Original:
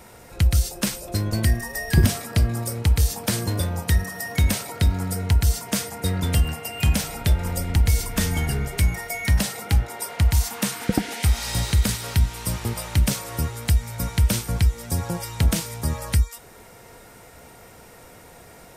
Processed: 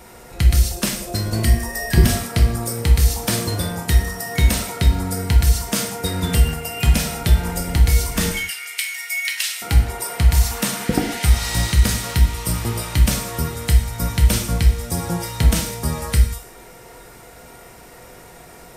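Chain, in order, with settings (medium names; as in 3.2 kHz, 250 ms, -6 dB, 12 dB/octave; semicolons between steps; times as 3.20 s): 8.31–9.62 s: resonant high-pass 2.4 kHz, resonance Q 1.7; gated-style reverb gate 210 ms falling, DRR 2 dB; trim +2 dB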